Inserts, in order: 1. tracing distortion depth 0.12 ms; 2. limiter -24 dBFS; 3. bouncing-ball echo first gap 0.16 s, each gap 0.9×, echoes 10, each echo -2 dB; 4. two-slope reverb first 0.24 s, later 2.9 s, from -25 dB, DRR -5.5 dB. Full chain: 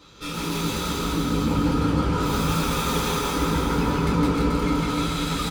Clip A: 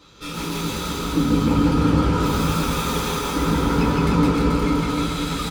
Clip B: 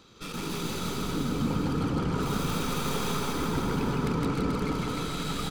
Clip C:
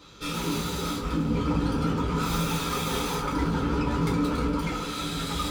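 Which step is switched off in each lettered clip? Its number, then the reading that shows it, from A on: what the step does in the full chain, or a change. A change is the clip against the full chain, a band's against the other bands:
2, momentary loudness spread change +3 LU; 4, echo-to-direct 10.5 dB to 2.5 dB; 3, loudness change -4.0 LU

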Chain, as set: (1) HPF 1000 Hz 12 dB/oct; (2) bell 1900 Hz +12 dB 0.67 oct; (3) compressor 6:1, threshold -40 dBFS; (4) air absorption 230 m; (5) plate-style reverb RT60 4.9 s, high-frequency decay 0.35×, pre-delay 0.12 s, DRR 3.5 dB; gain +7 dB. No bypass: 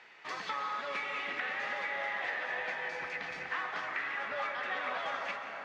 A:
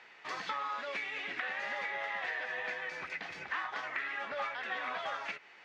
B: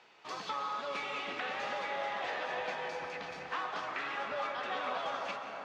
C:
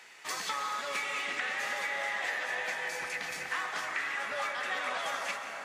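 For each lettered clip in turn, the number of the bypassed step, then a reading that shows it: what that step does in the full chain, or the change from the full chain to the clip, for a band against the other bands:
5, crest factor change +2.0 dB; 2, 2 kHz band -7.0 dB; 4, 4 kHz band +5.0 dB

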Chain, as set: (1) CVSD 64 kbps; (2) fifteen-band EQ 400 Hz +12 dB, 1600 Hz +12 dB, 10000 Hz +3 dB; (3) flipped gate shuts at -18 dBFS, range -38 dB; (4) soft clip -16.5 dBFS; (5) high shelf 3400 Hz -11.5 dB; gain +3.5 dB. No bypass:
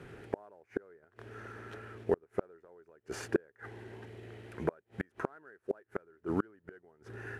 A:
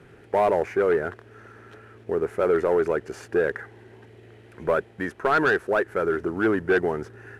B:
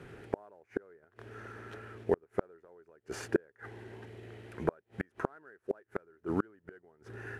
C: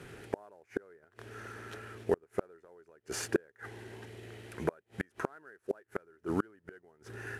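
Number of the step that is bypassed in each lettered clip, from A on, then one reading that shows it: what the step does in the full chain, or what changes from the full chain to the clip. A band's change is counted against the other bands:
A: 3, momentary loudness spread change -10 LU; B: 4, distortion -19 dB; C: 5, 8 kHz band +9.0 dB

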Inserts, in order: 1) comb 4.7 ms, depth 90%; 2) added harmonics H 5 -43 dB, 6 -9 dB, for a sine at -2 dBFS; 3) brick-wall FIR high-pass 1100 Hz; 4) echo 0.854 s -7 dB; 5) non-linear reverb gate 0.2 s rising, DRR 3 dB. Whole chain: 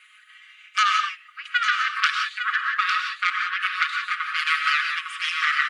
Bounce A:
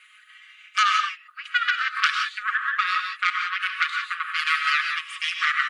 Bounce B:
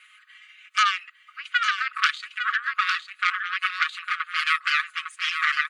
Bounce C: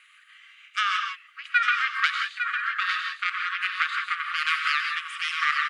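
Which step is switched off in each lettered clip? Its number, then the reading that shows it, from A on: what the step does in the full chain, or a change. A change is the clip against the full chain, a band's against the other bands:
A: 4, echo-to-direct -1.0 dB to -3.0 dB; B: 5, echo-to-direct -1.0 dB to -7.0 dB; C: 1, loudness change -2.5 LU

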